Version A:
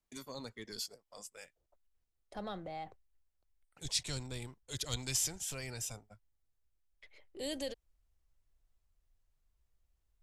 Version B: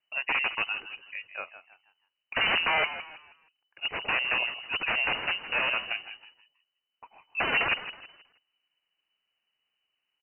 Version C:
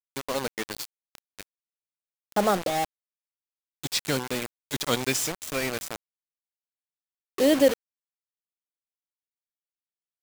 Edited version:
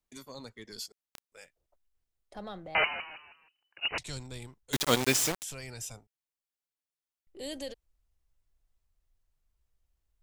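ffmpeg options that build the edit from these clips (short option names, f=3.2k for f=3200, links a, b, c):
-filter_complex "[2:a]asplit=3[a][b][c];[0:a]asplit=5[d][e][f][g][h];[d]atrim=end=0.922[i];[a]atrim=start=0.918:end=1.322[j];[e]atrim=start=1.318:end=2.752[k];[1:a]atrim=start=2.748:end=3.982[l];[f]atrim=start=3.978:end=4.732[m];[b]atrim=start=4.728:end=5.432[n];[g]atrim=start=5.428:end=6.072[o];[c]atrim=start=6.068:end=7.272[p];[h]atrim=start=7.268[q];[i][j]acrossfade=d=0.004:c1=hsin:c2=hsin[r];[r][k]acrossfade=d=0.004:c1=hsin:c2=hsin[s];[s][l]acrossfade=d=0.004:c1=hsin:c2=hsin[t];[t][m]acrossfade=d=0.004:c1=hsin:c2=hsin[u];[u][n]acrossfade=d=0.004:c1=hsin:c2=hsin[v];[v][o]acrossfade=d=0.004:c1=hsin:c2=hsin[w];[w][p]acrossfade=d=0.004:c1=hsin:c2=hsin[x];[x][q]acrossfade=d=0.004:c1=hsin:c2=hsin"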